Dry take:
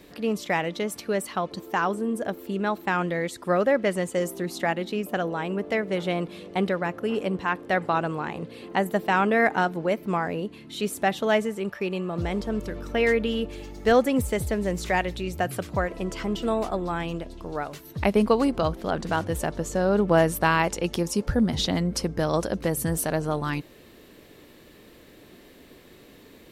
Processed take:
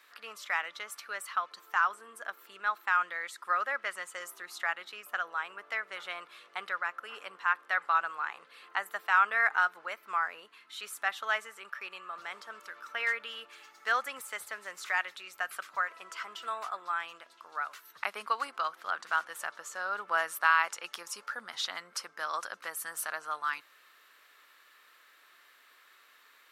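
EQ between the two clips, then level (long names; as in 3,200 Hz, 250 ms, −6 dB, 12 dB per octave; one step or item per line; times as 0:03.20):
high-pass with resonance 1,300 Hz, resonance Q 3.5
−7.5 dB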